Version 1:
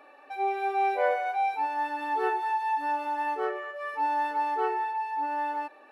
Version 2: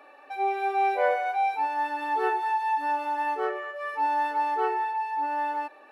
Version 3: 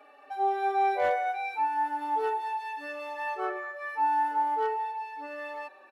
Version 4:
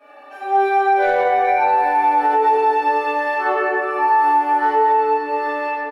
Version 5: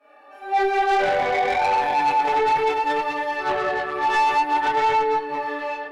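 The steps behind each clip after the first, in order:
Bessel high-pass 230 Hz; trim +2 dB
tone controls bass -3 dB, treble 0 dB; overload inside the chain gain 17 dB; endless flanger 4.4 ms -0.41 Hz
doubling 16 ms -11 dB; reverberation RT60 3.4 s, pre-delay 3 ms, DRR -16.5 dB; peak limiter -6 dBFS, peak gain reduction 7.5 dB; trim -2.5 dB
Chebyshev shaper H 3 -13 dB, 4 -28 dB, 6 -25 dB, 8 -31 dB, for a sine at -8 dBFS; chorus voices 2, 0.59 Hz, delay 25 ms, depth 4.3 ms; saturation -20 dBFS, distortion -12 dB; trim +5.5 dB

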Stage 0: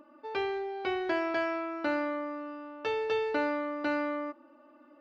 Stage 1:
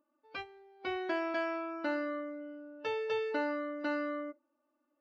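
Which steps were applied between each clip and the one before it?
spectral noise reduction 19 dB; trim -3.5 dB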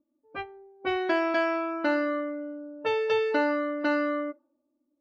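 level-controlled noise filter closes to 300 Hz, open at -32 dBFS; trim +8.5 dB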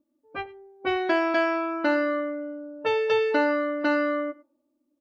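delay 104 ms -20.5 dB; trim +2.5 dB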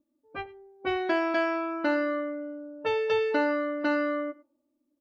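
bass shelf 150 Hz +5.5 dB; trim -3.5 dB

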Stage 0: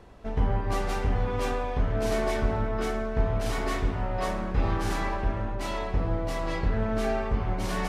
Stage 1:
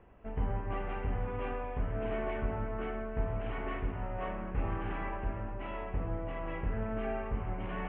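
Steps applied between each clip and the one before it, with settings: steep low-pass 3 kHz 72 dB/octave; trim -8 dB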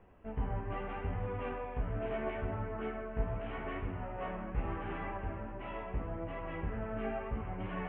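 flange 0.78 Hz, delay 9.7 ms, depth 8.4 ms, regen +27%; trim +2 dB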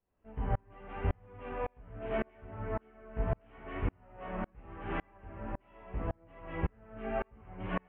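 sawtooth tremolo in dB swelling 1.8 Hz, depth 37 dB; trim +8.5 dB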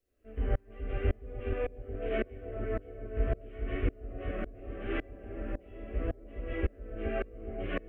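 static phaser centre 380 Hz, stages 4; bucket-brigade echo 421 ms, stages 2048, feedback 47%, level -7 dB; trim +5.5 dB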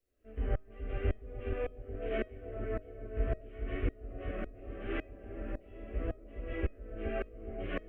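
feedback comb 630 Hz, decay 0.31 s, mix 60%; trim +5 dB

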